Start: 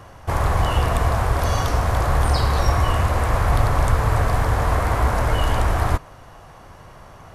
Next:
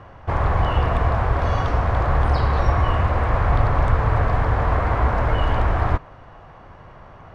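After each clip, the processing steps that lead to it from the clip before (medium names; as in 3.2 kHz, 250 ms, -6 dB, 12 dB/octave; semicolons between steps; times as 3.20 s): low-pass 2.6 kHz 12 dB/octave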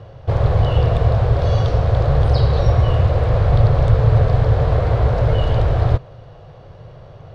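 graphic EQ 125/250/500/1000/2000/4000 Hz +12/-8/+10/-8/-6/+9 dB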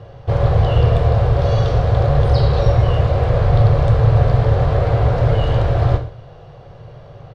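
delay 133 ms -21.5 dB; gated-style reverb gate 150 ms falling, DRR 4 dB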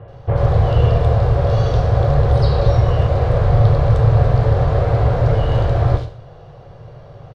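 bands offset in time lows, highs 80 ms, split 2.8 kHz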